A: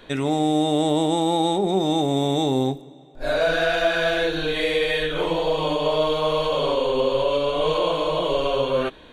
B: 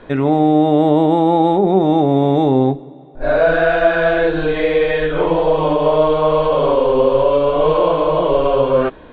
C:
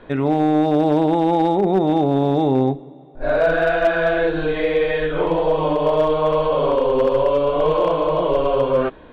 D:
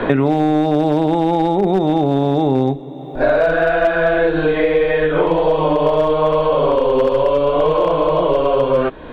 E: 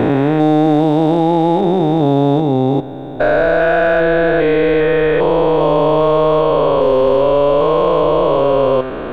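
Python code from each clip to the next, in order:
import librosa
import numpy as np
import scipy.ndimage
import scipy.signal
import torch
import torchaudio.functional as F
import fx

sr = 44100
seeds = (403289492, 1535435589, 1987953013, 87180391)

y1 = scipy.signal.sosfilt(scipy.signal.butter(2, 1600.0, 'lowpass', fs=sr, output='sos'), x)
y1 = F.gain(torch.from_numpy(y1), 8.0).numpy()
y2 = np.clip(y1, -10.0 ** (-6.0 / 20.0), 10.0 ** (-6.0 / 20.0))
y2 = F.gain(torch.from_numpy(y2), -3.5).numpy()
y3 = fx.band_squash(y2, sr, depth_pct=100)
y3 = F.gain(torch.from_numpy(y3), 1.5).numpy()
y4 = fx.spec_steps(y3, sr, hold_ms=400)
y4 = F.gain(torch.from_numpy(y4), 4.0).numpy()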